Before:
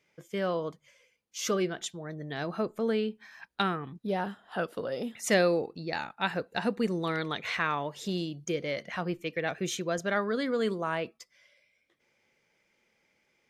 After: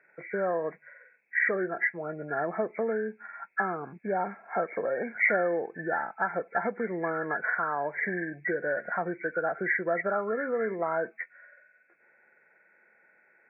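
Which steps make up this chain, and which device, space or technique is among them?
hearing aid with frequency lowering (hearing-aid frequency compression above 1,300 Hz 4 to 1; downward compressor 3 to 1, threshold −33 dBFS, peak gain reduction 11 dB; loudspeaker in its box 260–7,000 Hz, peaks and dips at 270 Hz −6 dB, 700 Hz +5 dB, 1,200 Hz −5 dB, 2,200 Hz +8 dB, 3,200 Hz −8 dB)
level +6.5 dB

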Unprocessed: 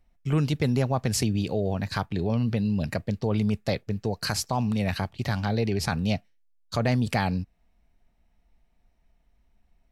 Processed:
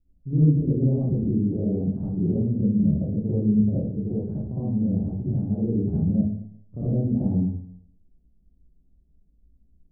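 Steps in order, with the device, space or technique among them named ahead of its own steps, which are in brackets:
next room (low-pass filter 380 Hz 24 dB per octave; convolution reverb RT60 0.70 s, pre-delay 43 ms, DRR −10 dB)
level −4.5 dB

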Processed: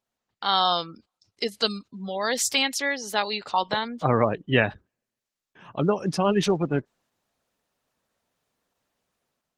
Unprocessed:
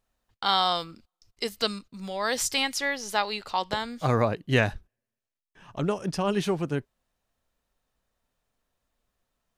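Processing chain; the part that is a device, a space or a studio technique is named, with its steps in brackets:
0:01.53–0:03.33: dynamic equaliser 1,100 Hz, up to −4 dB, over −36 dBFS, Q 1.1
noise-suppressed video call (high-pass filter 130 Hz 12 dB per octave; gate on every frequency bin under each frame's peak −25 dB strong; automatic gain control gain up to 9 dB; level −4 dB; Opus 16 kbit/s 48,000 Hz)

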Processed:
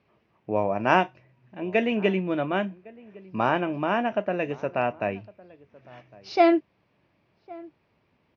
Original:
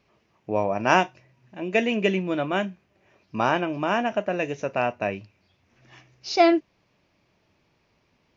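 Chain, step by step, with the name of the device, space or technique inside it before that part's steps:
high-pass filter 60 Hz
shout across a valley (high-frequency loss of the air 230 metres; slap from a distant wall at 190 metres, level −22 dB)

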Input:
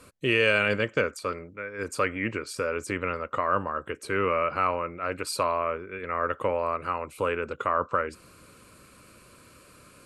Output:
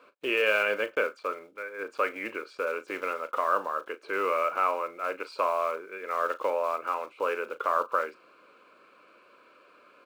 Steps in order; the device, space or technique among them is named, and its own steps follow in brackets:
early digital voice recorder (band-pass filter 270–3,400 Hz; one scale factor per block 5 bits)
bass and treble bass −12 dB, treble −10 dB
parametric band 110 Hz −4 dB 2.4 octaves
notch filter 1,900 Hz, Q 6.9
double-tracking delay 37 ms −13 dB

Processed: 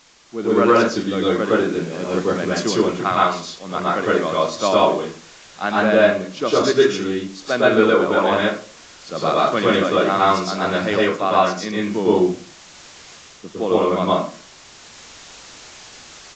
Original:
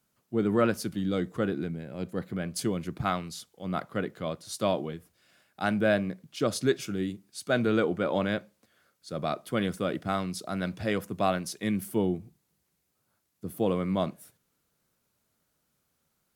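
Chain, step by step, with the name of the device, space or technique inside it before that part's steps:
filmed off a television (band-pass filter 250–7,300 Hz; parametric band 1,100 Hz +7 dB 0.31 octaves; convolution reverb RT60 0.40 s, pre-delay 106 ms, DRR −6 dB; white noise bed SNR 22 dB; automatic gain control gain up to 12 dB; level −1 dB; AAC 32 kbit/s 16,000 Hz)

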